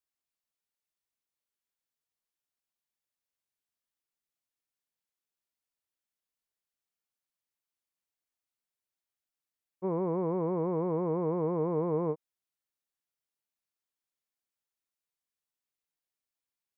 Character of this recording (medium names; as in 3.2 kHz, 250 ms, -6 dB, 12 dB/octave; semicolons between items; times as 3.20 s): noise floor -92 dBFS; spectral tilt -3.5 dB/octave